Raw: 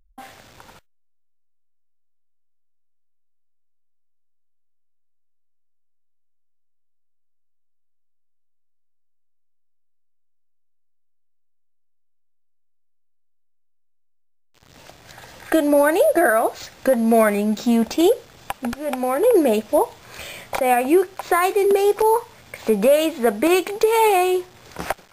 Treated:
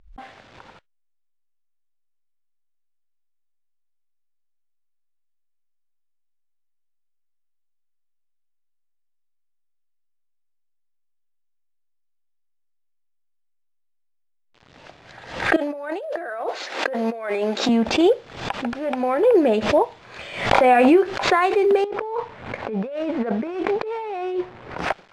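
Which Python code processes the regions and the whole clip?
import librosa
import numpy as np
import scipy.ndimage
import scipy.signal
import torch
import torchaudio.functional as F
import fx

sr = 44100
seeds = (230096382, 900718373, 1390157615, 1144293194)

y = fx.chain(x, sr, fx.highpass(hz=320.0, slope=24),
    fx.over_compress(threshold_db=-27.0, ratio=-1.0), at=(15.56, 17.69))
y = fx.chain(y, sr, fx.doubler(ms=20.0, db=-11.0),
    fx.pre_swell(db_per_s=21.0), at=(20.51, 21.29))
y = fx.chain(y, sr, fx.median_filter(points=15),
    fx.high_shelf(hz=6900.0, db=-9.0),
    fx.over_compress(threshold_db=-26.0, ratio=-1.0), at=(21.84, 24.78))
y = scipy.signal.sosfilt(scipy.signal.butter(2, 3600.0, 'lowpass', fs=sr, output='sos'), y)
y = fx.low_shelf(y, sr, hz=100.0, db=-8.0)
y = fx.pre_swell(y, sr, db_per_s=93.0)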